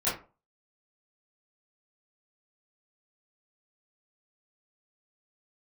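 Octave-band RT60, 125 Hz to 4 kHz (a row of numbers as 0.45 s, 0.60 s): 0.35 s, 0.35 s, 0.35 s, 0.35 s, 0.25 s, 0.20 s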